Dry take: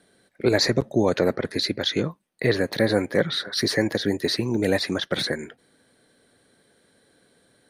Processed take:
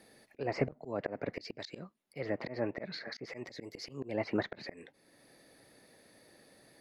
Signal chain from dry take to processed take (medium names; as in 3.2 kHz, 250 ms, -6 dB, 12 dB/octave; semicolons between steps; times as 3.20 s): slow attack 678 ms; low-pass that closes with the level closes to 1.6 kHz, closed at -33 dBFS; tape speed +13%